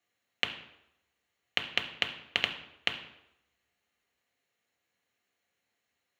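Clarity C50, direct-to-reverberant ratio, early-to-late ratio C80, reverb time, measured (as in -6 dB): 10.5 dB, 4.0 dB, 13.0 dB, 0.85 s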